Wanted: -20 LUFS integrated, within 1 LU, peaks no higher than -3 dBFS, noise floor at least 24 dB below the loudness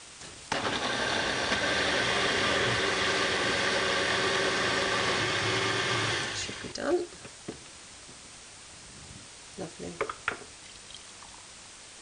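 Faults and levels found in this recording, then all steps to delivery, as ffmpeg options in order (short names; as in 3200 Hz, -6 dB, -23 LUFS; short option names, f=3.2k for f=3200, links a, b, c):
noise floor -49 dBFS; noise floor target -52 dBFS; loudness -27.5 LUFS; peak -13.5 dBFS; loudness target -20.0 LUFS
-> -af "afftdn=nr=6:nf=-49"
-af "volume=7.5dB"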